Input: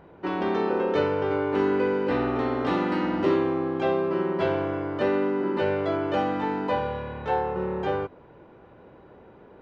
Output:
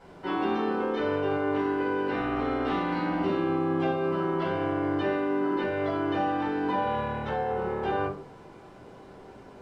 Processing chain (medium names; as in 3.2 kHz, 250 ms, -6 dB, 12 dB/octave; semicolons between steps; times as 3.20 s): tilt EQ +1.5 dB/octave; peak limiter -24 dBFS, peak gain reduction 10.5 dB; bit crusher 10-bit; distance through air 58 m; simulated room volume 290 m³, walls furnished, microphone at 7.2 m; trim -9 dB